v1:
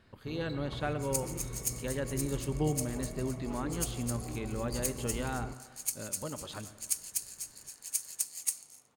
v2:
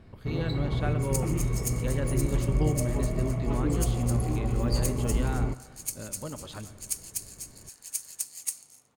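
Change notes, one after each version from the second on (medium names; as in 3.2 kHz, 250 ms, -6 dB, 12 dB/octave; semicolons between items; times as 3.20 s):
first sound +9.5 dB; master: add bass shelf 210 Hz +5 dB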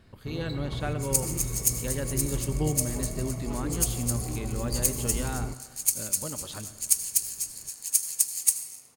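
first sound -5.5 dB; second sound: send on; master: add treble shelf 4.6 kHz +8.5 dB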